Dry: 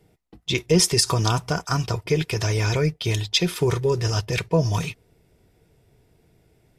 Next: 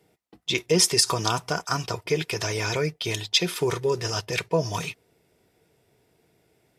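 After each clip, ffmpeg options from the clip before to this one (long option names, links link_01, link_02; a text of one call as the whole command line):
ffmpeg -i in.wav -af "highpass=frequency=330:poles=1" out.wav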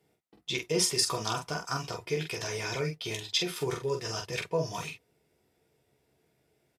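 ffmpeg -i in.wav -af "aecho=1:1:14|45:0.501|0.562,volume=-8.5dB" out.wav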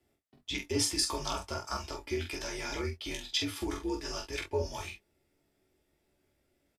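ffmpeg -i in.wav -filter_complex "[0:a]afreqshift=-71,asplit=2[link_01][link_02];[link_02]adelay=21,volume=-8.5dB[link_03];[link_01][link_03]amix=inputs=2:normalize=0,volume=-3.5dB" out.wav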